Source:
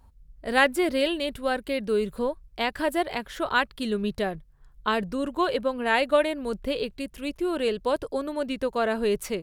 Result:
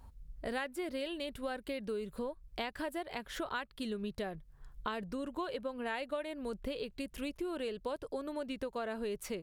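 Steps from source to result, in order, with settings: compression 5:1, threshold -38 dBFS, peak gain reduction 21 dB; trim +1 dB

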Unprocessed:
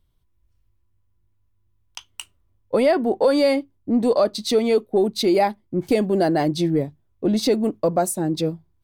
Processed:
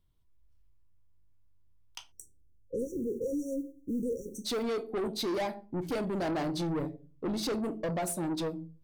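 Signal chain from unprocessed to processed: simulated room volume 180 m³, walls furnished, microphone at 0.54 m; saturation -22.5 dBFS, distortion -8 dB; 2.79–4.63 s: modulation noise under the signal 31 dB; 2.12–4.45 s: spectral selection erased 550–5600 Hz; trim -6.5 dB

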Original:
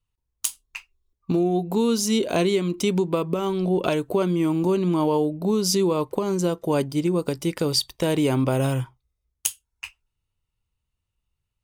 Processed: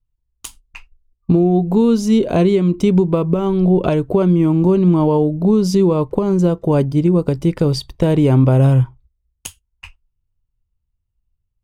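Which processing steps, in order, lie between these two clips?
tilt EQ -3.5 dB/octave; gate -46 dBFS, range -11 dB; dynamic bell 290 Hz, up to -3 dB, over -24 dBFS, Q 1.4; trim +3.5 dB

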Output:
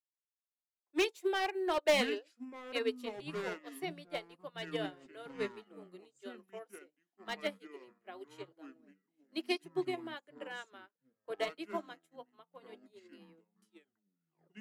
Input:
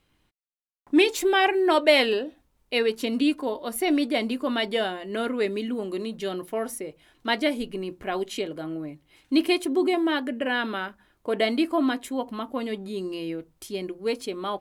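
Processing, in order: tape stop on the ending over 1.01 s; steep high-pass 340 Hz 48 dB/octave; hard clipper -16 dBFS, distortion -15 dB; ever faster or slower copies 531 ms, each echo -7 st, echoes 2, each echo -6 dB; upward expansion 2.5:1, over -41 dBFS; trim -5.5 dB

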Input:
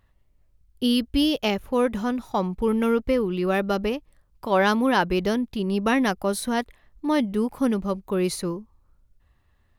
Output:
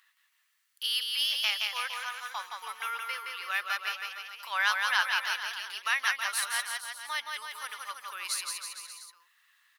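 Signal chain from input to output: high-pass 1.3 kHz 24 dB/octave; on a send: bouncing-ball echo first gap 170 ms, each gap 0.9×, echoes 5; on the sum: tape noise reduction on one side only encoder only

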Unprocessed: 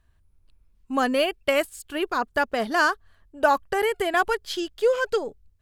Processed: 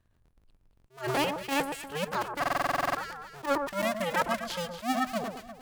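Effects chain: cycle switcher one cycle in 2, inverted; echo whose repeats swap between lows and highs 118 ms, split 1.5 kHz, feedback 59%, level -7 dB; buffer glitch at 2.41 s, samples 2048, times 11; attacks held to a fixed rise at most 220 dB/s; trim -6 dB

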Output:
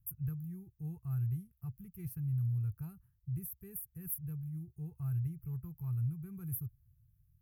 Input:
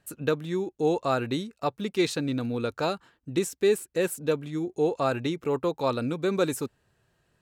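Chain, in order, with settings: inverse Chebyshev band-stop 240–7900 Hz, stop band 40 dB; trim +7.5 dB

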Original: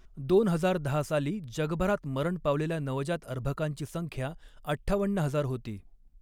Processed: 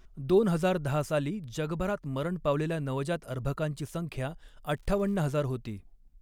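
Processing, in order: 1.19–2.32 s: compression 2.5:1, threshold -28 dBFS, peak gain reduction 4 dB; 4.76–5.21 s: crackle 210 per s -> 580 per s -48 dBFS

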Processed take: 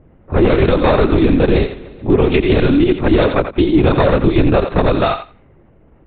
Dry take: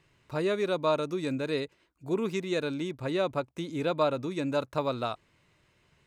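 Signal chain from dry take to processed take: single-diode clipper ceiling -29 dBFS; peaking EQ 320 Hz +10.5 dB 0.39 oct; de-hum 48.93 Hz, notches 5; LPC vocoder at 8 kHz whisper; level-controlled noise filter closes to 730 Hz, open at -28 dBFS; thinning echo 86 ms, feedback 16%, high-pass 570 Hz, level -9.5 dB; loudness maximiser +21 dB; 0.67–3.01 s: modulated delay 144 ms, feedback 63%, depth 103 cents, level -20 dB; trim -2 dB

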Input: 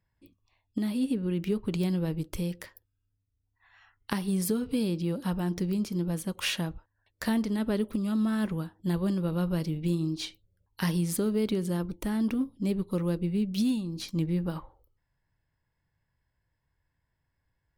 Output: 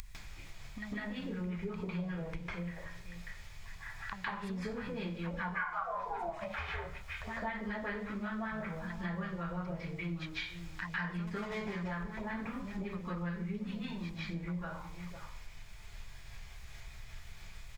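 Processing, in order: 5.39–6.68 s: ring modulator 1.4 kHz -> 230 Hz; delay 502 ms -20 dB; LFO low-pass sine 5.2 Hz 500–1700 Hz; added noise brown -54 dBFS; bass shelf 130 Hz +5 dB; 11.27–11.73 s: hard clipper -22 dBFS, distortion -26 dB; amplifier tone stack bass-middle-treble 10-0-10; upward compressor, threshold -37 dBFS; reverberation RT60 0.45 s, pre-delay 148 ms, DRR -10.5 dB; compression 2.5:1, threshold -39 dBFS, peak gain reduction 10 dB; trim +2 dB

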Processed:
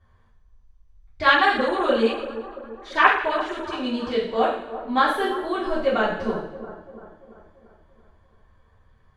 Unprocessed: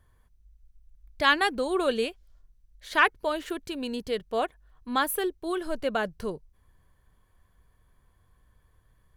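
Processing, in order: distance through air 120 m; two-band feedback delay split 1.4 kHz, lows 340 ms, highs 86 ms, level -13 dB; two-slope reverb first 0.57 s, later 1.6 s, from -18 dB, DRR -10 dB; 1.34–3.73 s: LFO notch sine 8.9 Hz 340–5200 Hz; trim -3 dB

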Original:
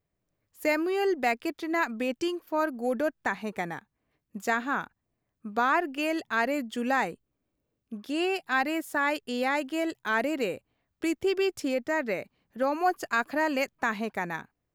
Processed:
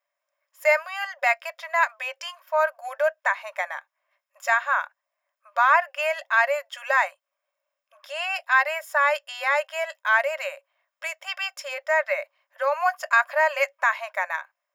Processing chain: brick-wall FIR high-pass 540 Hz; reverberation RT60 0.15 s, pre-delay 3 ms, DRR 13 dB

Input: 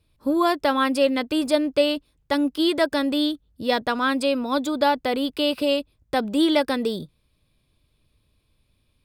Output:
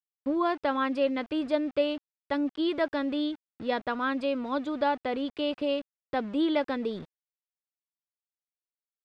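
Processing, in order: small samples zeroed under -36.5 dBFS; low-pass 2.8 kHz 12 dB/octave; trim -6.5 dB

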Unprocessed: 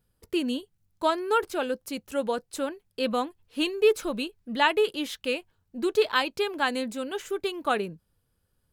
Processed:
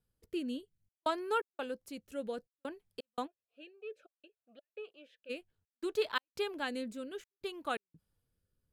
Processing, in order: trance gate "xxxxx.xx." 85 bpm -60 dB; rotary cabinet horn 0.6 Hz; 3.26–5.29 s: talking filter a-e 4 Hz -> 1.9 Hz; trim -7.5 dB

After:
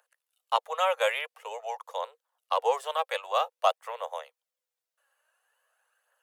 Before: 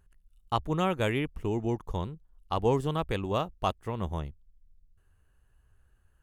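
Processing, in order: phaser 0.49 Hz, delay 3.8 ms, feedback 40%; wow and flutter 27 cents; steep high-pass 490 Hz 96 dB/octave; trim +4 dB

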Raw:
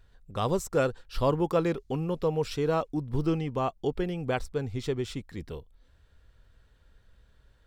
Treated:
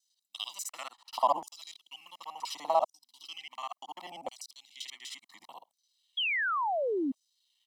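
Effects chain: time reversed locally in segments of 49 ms; bass shelf 140 Hz -10.5 dB; static phaser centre 420 Hz, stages 6; comb 1 ms, depth 67%; LFO high-pass saw down 0.7 Hz 580–6300 Hz; painted sound fall, 6.17–7.12 s, 250–3400 Hz -30 dBFS

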